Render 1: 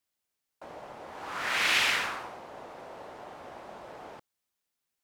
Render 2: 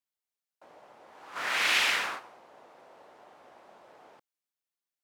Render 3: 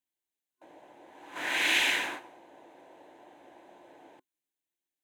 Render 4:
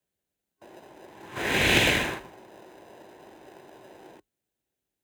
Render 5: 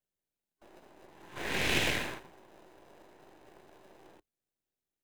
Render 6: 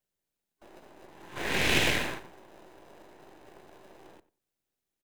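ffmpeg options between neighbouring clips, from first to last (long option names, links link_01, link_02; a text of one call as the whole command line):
ffmpeg -i in.wav -af "agate=range=-9dB:threshold=-36dB:ratio=16:detection=peak,highpass=frequency=270:poles=1" out.wav
ffmpeg -i in.wav -af "superequalizer=6b=2.82:10b=0.316:14b=0.398" out.wav
ffmpeg -i in.wav -filter_complex "[0:a]asplit=2[link_01][link_02];[link_02]acrusher=samples=40:mix=1:aa=0.000001,volume=-3dB[link_03];[link_01][link_03]amix=inputs=2:normalize=0,afreqshift=35,volume=3dB" out.wav
ffmpeg -i in.wav -af "aeval=exprs='if(lt(val(0),0),0.251*val(0),val(0))':channel_layout=same,volume=-5dB" out.wav
ffmpeg -i in.wav -filter_complex "[0:a]asplit=2[link_01][link_02];[link_02]adelay=93,lowpass=frequency=2100:poles=1,volume=-17dB,asplit=2[link_03][link_04];[link_04]adelay=93,lowpass=frequency=2100:poles=1,volume=0.2[link_05];[link_01][link_03][link_05]amix=inputs=3:normalize=0,volume=4dB" out.wav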